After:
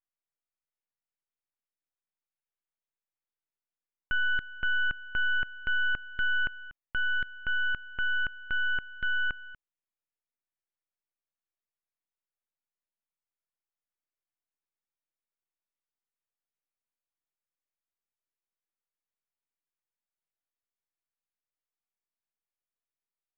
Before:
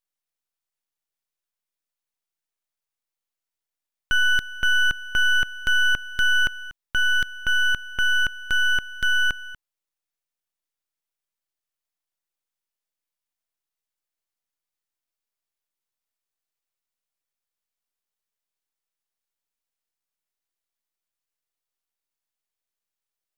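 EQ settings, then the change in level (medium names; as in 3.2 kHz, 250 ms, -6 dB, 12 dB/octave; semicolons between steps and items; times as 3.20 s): low-pass 2.6 kHz 24 dB/octave; -7.5 dB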